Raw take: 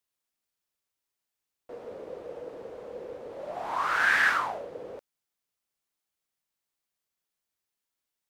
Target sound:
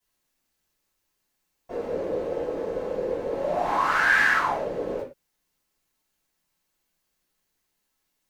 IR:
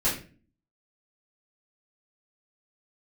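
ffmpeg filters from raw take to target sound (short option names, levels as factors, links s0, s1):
-filter_complex "[0:a]acompressor=threshold=0.02:ratio=2[s0];[1:a]atrim=start_sample=2205,afade=t=out:st=0.19:d=0.01,atrim=end_sample=8820[s1];[s0][s1]afir=irnorm=-1:irlink=0"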